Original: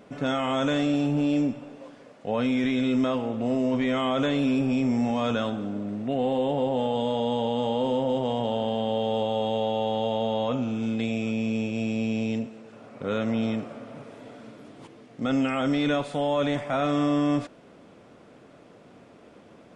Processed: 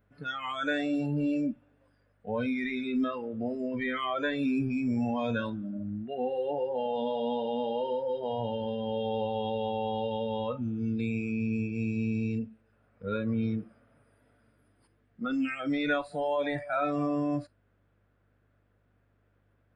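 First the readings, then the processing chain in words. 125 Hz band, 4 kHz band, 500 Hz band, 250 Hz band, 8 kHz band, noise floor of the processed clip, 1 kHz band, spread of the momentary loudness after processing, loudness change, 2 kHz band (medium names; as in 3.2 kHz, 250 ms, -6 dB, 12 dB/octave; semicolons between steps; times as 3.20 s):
-4.0 dB, -8.0 dB, -5.0 dB, -5.5 dB, no reading, -70 dBFS, -4.5 dB, 7 LU, -5.0 dB, -1.0 dB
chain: hum 50 Hz, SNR 23 dB; spectral noise reduction 21 dB; fifteen-band graphic EQ 100 Hz +9 dB, 1.6 kHz +11 dB, 6.3 kHz -9 dB; trim -4 dB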